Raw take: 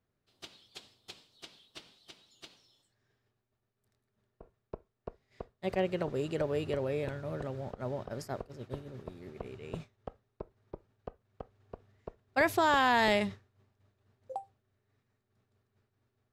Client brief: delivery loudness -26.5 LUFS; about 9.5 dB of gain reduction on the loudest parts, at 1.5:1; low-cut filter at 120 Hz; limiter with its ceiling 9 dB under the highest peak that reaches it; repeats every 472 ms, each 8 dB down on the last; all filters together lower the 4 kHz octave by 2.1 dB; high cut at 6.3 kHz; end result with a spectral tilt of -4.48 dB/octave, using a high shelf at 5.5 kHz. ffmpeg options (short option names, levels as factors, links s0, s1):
-af "highpass=120,lowpass=6300,equalizer=f=4000:t=o:g=-4.5,highshelf=f=5500:g=6.5,acompressor=threshold=0.00355:ratio=1.5,alimiter=level_in=2.99:limit=0.0631:level=0:latency=1,volume=0.335,aecho=1:1:472|944|1416|1888|2360:0.398|0.159|0.0637|0.0255|0.0102,volume=11.2"